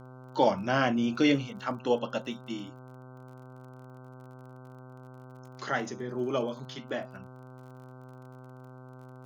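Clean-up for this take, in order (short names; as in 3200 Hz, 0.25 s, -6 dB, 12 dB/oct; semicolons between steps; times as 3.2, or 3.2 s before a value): de-click; de-hum 128.1 Hz, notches 12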